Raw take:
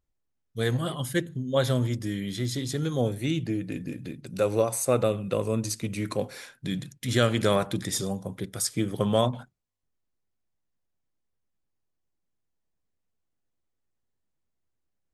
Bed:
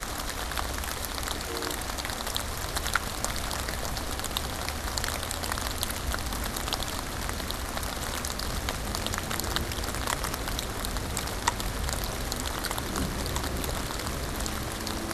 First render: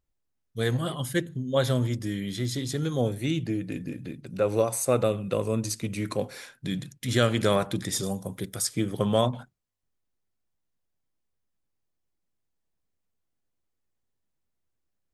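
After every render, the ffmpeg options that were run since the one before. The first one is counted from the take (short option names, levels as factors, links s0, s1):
-filter_complex "[0:a]asettb=1/sr,asplit=3[s0][s1][s2];[s0]atrim=end=3.854[s3];[s1]atrim=start=3.85:end=4.49,asetpts=PTS-STARTPTS,afade=t=in:d=0.004:c=qsin,afade=t=out:st=0.636:d=0.004:c=qsin,acrossover=split=3100[s4][s5];[s5]acompressor=threshold=0.002:ratio=4:attack=1:release=60[s6];[s4][s6]amix=inputs=2:normalize=0[s7];[s2]atrim=start=4.486[s8];[s3][s7]acrossfade=d=0.004:c1=hsin:c2=qsin[s9];[s9][s8]acrossfade=d=0.004:c1=qsin:c2=hsin,asettb=1/sr,asplit=3[s10][s11][s12];[s10]atrim=end=8.034[s13];[s11]atrim=start=8.03:end=8.56,asetpts=PTS-STARTPTS,afade=t=in:d=0.004:c=qsin,afade=t=out:st=0.526:d=0.004:c=qsin,highshelf=f=7200:g=11.5[s14];[s12]atrim=start=8.556[s15];[s13][s14]acrossfade=d=0.004:c1=hsin:c2=qsin[s16];[s16][s15]acrossfade=d=0.004:c1=qsin:c2=hsin"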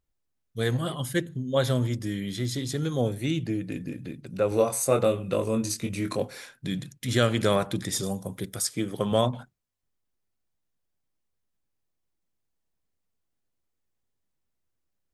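-filter_complex "[0:a]asettb=1/sr,asplit=3[s0][s1][s2];[s0]atrim=end=4.494[s3];[s1]atrim=start=4.49:end=6.22,asetpts=PTS-STARTPTS,afade=t=in:d=0.004:c=qsin,afade=t=out:st=1.726:d=0.004:c=qsin,asplit=2[s4][s5];[s5]adelay=22,volume=0.562[s6];[s4][s6]amix=inputs=2:normalize=0,atrim=end_sample=76293[s7];[s2]atrim=start=6.216[s8];[s3][s7]acrossfade=d=0.004:c1=hsin:c2=qsin[s9];[s9][s8]acrossfade=d=0.004:c1=qsin:c2=hsin,asettb=1/sr,asplit=3[s10][s11][s12];[s10]atrim=end=8.594[s13];[s11]atrim=start=8.59:end=9.12,asetpts=PTS-STARTPTS,afade=t=in:d=0.004:c=qsin,afade=t=out:st=0.526:d=0.004:c=qsin,lowshelf=f=120:g=-9.5[s14];[s12]atrim=start=9.116[s15];[s13][s14]acrossfade=d=0.004:c1=hsin:c2=qsin[s16];[s16][s15]acrossfade=d=0.004:c1=qsin:c2=hsin"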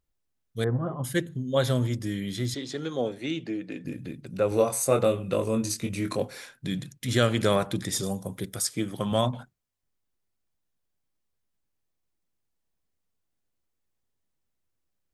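-filter_complex "[0:a]asettb=1/sr,asplit=3[s0][s1][s2];[s0]atrim=end=0.644[s3];[s1]atrim=start=0.64:end=1.04,asetpts=PTS-STARTPTS,afade=t=in:d=0.004:c=qsin,afade=t=out:st=0.396:d=0.004:c=qsin,lowpass=f=1300:w=0.5412,lowpass=f=1300:w=1.3066[s4];[s2]atrim=start=1.036[s5];[s3][s4]acrossfade=d=0.004:c1=hsin:c2=qsin[s6];[s6][s5]acrossfade=d=0.004:c1=qsin:c2=hsin,asettb=1/sr,asplit=3[s7][s8][s9];[s7]atrim=end=2.544[s10];[s8]atrim=start=2.54:end=3.85,asetpts=PTS-STARTPTS,afade=t=in:d=0.004:c=qsin,afade=t=out:st=1.306:d=0.004:c=qsin,highpass=270,lowpass=5100[s11];[s9]atrim=start=3.846[s12];[s10][s11]acrossfade=d=0.004:c1=hsin:c2=qsin[s13];[s13][s12]acrossfade=d=0.004:c1=qsin:c2=hsin,asettb=1/sr,asplit=3[s14][s15][s16];[s14]atrim=end=8.834[s17];[s15]atrim=start=8.83:end=9.33,asetpts=PTS-STARTPTS,afade=t=in:d=0.004:c=qsin,afade=t=out:st=0.496:d=0.004:c=qsin,equalizer=f=440:t=o:w=0.48:g=-8[s18];[s16]atrim=start=9.326[s19];[s17][s18]acrossfade=d=0.004:c1=hsin:c2=qsin[s20];[s20][s19]acrossfade=d=0.004:c1=qsin:c2=hsin"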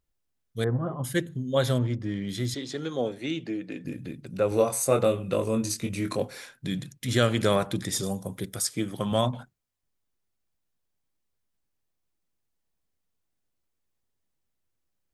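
-filter_complex "[0:a]asettb=1/sr,asplit=3[s0][s1][s2];[s0]atrim=end=1.784[s3];[s1]atrim=start=1.78:end=2.29,asetpts=PTS-STARTPTS,afade=t=in:d=0.004:c=qsin,afade=t=out:st=0.506:d=0.004:c=qsin,adynamicsmooth=sensitivity=4:basefreq=2300[s4];[s2]atrim=start=2.286[s5];[s3][s4]acrossfade=d=0.004:c1=hsin:c2=qsin[s6];[s6][s5]acrossfade=d=0.004:c1=qsin:c2=hsin"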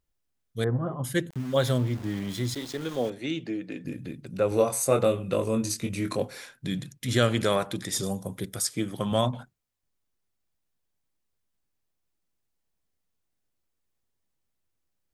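-filter_complex "[0:a]asettb=1/sr,asplit=3[s0][s1][s2];[s0]atrim=end=1.304[s3];[s1]atrim=start=1.3:end=3.1,asetpts=PTS-STARTPTS,afade=t=in:d=0.004:c=qsin,afade=t=out:st=1.796:d=0.004:c=qsin,aeval=exprs='val(0)*gte(abs(val(0)),0.0112)':c=same[s4];[s2]atrim=start=3.096[s5];[s3][s4]acrossfade=d=0.004:c1=hsin:c2=qsin[s6];[s6][s5]acrossfade=d=0.004:c1=qsin:c2=hsin,asettb=1/sr,asplit=3[s7][s8][s9];[s7]atrim=end=7.434[s10];[s8]atrim=start=7.43:end=7.96,asetpts=PTS-STARTPTS,afade=t=in:d=0.004:c=qsin,afade=t=out:st=0.526:d=0.004:c=qsin,lowshelf=f=250:g=-6.5[s11];[s9]atrim=start=7.956[s12];[s10][s11]acrossfade=d=0.004:c1=hsin:c2=qsin[s13];[s13][s12]acrossfade=d=0.004:c1=qsin:c2=hsin"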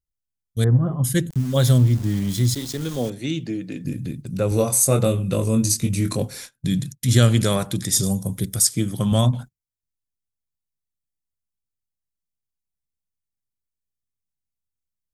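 -af "agate=range=0.112:threshold=0.00708:ratio=16:detection=peak,bass=f=250:g=13,treble=f=4000:g=12"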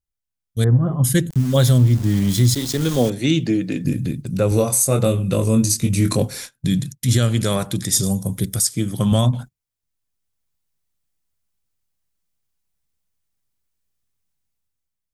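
-af "dynaudnorm=f=170:g=9:m=3.35,alimiter=limit=0.501:level=0:latency=1:release=422"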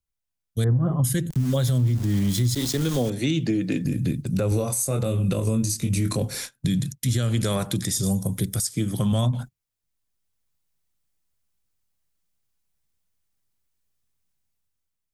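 -filter_complex "[0:a]acrossover=split=140[s0][s1];[s1]acompressor=threshold=0.1:ratio=2[s2];[s0][s2]amix=inputs=2:normalize=0,alimiter=limit=0.188:level=0:latency=1:release=141"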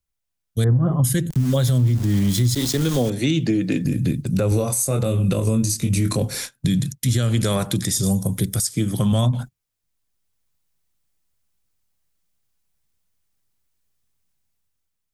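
-af "volume=1.5"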